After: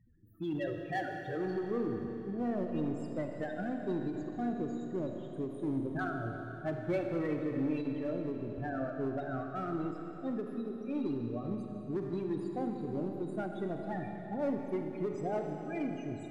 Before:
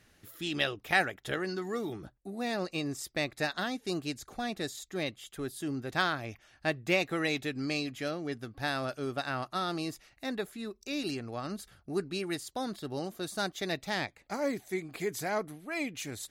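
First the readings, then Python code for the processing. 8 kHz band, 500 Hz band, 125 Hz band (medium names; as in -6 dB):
under -20 dB, -0.5 dB, +1.0 dB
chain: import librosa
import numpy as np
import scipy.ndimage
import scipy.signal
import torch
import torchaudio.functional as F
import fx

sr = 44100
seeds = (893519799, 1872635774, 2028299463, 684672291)

p1 = fx.spec_topn(x, sr, count=8)
p2 = fx.tilt_shelf(p1, sr, db=8.0, hz=1300.0)
p3 = 10.0 ** (-26.5 / 20.0) * (np.abs((p2 / 10.0 ** (-26.5 / 20.0) + 3.0) % 4.0 - 2.0) - 1.0)
p4 = p2 + (p3 * librosa.db_to_amplitude(-8.0))
p5 = fx.rev_schroeder(p4, sr, rt60_s=3.6, comb_ms=26, drr_db=2.5)
p6 = fx.end_taper(p5, sr, db_per_s=110.0)
y = p6 * librosa.db_to_amplitude(-8.5)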